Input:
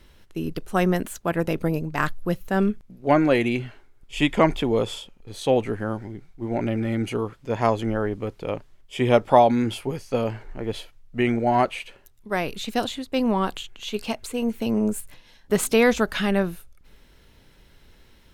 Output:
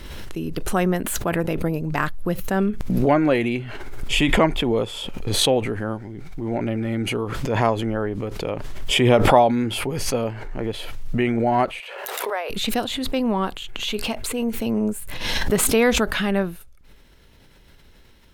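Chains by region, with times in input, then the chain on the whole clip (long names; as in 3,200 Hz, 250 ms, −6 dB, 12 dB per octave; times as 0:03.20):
0:11.80–0:12.50: Butterworth high-pass 470 Hz + high-shelf EQ 3,100 Hz −9 dB + background raised ahead of every attack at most 32 dB per second
whole clip: dynamic equaliser 6,100 Hz, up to −5 dB, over −50 dBFS, Q 1.3; background raised ahead of every attack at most 30 dB per second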